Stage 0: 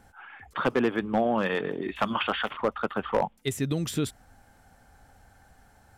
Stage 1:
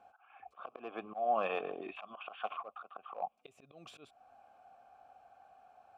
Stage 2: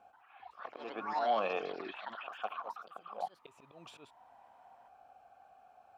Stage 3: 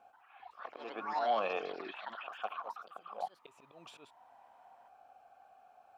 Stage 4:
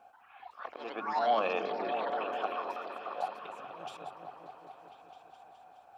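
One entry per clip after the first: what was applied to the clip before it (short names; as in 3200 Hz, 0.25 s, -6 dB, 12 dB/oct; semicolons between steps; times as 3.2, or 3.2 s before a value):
auto swell 0.318 s; vowel filter a; gain +7 dB
echoes that change speed 0.131 s, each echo +4 st, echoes 3, each echo -6 dB
low shelf 180 Hz -7.5 dB
repeats that get brighter 0.209 s, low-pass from 200 Hz, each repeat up 1 oct, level 0 dB; gain +3.5 dB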